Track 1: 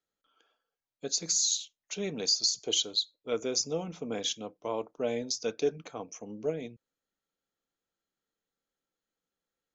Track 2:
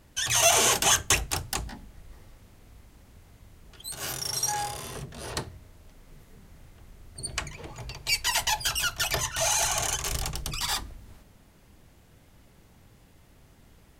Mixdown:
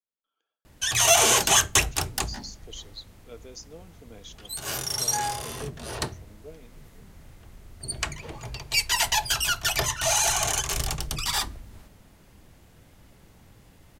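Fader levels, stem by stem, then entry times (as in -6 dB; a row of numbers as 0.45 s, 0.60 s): -13.5 dB, +2.5 dB; 0.00 s, 0.65 s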